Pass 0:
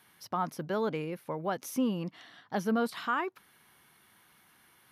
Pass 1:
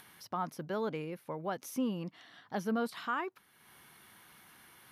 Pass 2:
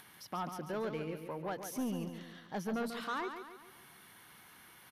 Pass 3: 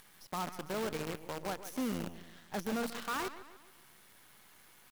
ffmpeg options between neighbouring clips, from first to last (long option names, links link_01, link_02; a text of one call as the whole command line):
ffmpeg -i in.wav -af "acompressor=mode=upward:threshold=-45dB:ratio=2.5,volume=-4dB" out.wav
ffmpeg -i in.wav -af "asoftclip=type=tanh:threshold=-31.5dB,aecho=1:1:141|282|423|564|705|846:0.398|0.191|0.0917|0.044|0.0211|0.0101" out.wav
ffmpeg -i in.wav -af "acrusher=bits=7:dc=4:mix=0:aa=0.000001" out.wav